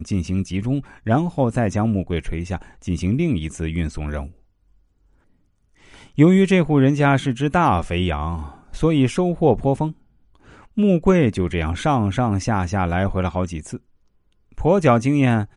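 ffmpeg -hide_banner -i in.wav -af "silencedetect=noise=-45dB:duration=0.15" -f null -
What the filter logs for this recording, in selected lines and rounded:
silence_start: 4.38
silence_end: 5.80 | silence_duration: 1.42
silence_start: 9.95
silence_end: 10.35 | silence_duration: 0.40
silence_start: 13.78
silence_end: 14.52 | silence_duration: 0.74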